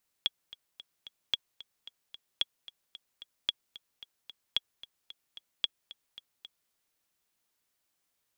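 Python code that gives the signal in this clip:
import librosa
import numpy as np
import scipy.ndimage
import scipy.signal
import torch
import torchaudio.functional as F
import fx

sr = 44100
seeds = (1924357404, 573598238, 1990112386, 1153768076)

y = fx.click_track(sr, bpm=223, beats=4, bars=6, hz=3340.0, accent_db=18.5, level_db=-13.5)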